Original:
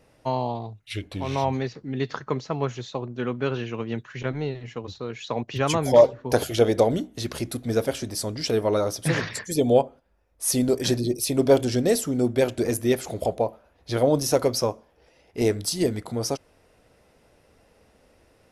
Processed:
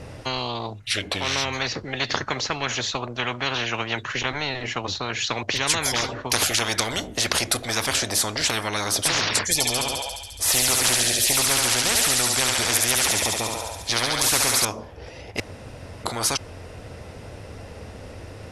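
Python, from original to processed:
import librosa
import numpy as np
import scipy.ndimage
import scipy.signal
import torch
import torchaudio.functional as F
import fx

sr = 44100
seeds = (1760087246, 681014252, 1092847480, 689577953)

y = fx.echo_thinned(x, sr, ms=70, feedback_pct=80, hz=1100.0, wet_db=-3.5, at=(9.53, 14.65))
y = fx.edit(y, sr, fx.room_tone_fill(start_s=15.4, length_s=0.64), tone=tone)
y = scipy.signal.sosfilt(scipy.signal.butter(2, 9300.0, 'lowpass', fs=sr, output='sos'), y)
y = fx.peak_eq(y, sr, hz=95.0, db=14.5, octaves=0.81)
y = fx.spectral_comp(y, sr, ratio=10.0)
y = y * 10.0 ** (2.5 / 20.0)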